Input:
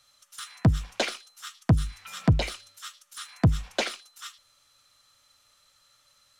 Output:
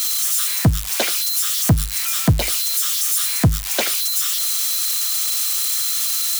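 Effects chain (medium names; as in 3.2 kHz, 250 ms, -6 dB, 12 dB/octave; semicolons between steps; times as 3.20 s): zero-crossing glitches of -19 dBFS; trim +5 dB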